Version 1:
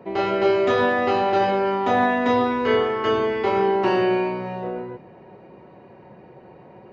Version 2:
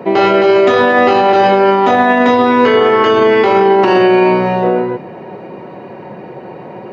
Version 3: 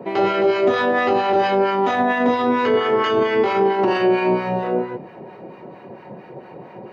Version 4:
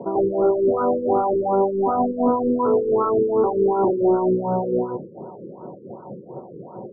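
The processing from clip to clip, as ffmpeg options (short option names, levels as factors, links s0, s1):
-af "highpass=140,alimiter=level_in=7.5:limit=0.891:release=50:level=0:latency=1,volume=0.891"
-filter_complex "[0:a]acrossover=split=910[s0][s1];[s0]aeval=exprs='val(0)*(1-0.7/2+0.7/2*cos(2*PI*4.4*n/s))':c=same[s2];[s1]aeval=exprs='val(0)*(1-0.7/2-0.7/2*cos(2*PI*4.4*n/s))':c=same[s3];[s2][s3]amix=inputs=2:normalize=0,volume=0.562"
-filter_complex "[0:a]asplit=2[s0][s1];[s1]volume=12.6,asoftclip=hard,volume=0.0794,volume=0.562[s2];[s0][s2]amix=inputs=2:normalize=0,afftfilt=real='re*lt(b*sr/1024,510*pow(1500/510,0.5+0.5*sin(2*PI*2.7*pts/sr)))':imag='im*lt(b*sr/1024,510*pow(1500/510,0.5+0.5*sin(2*PI*2.7*pts/sr)))':win_size=1024:overlap=0.75,volume=0.75"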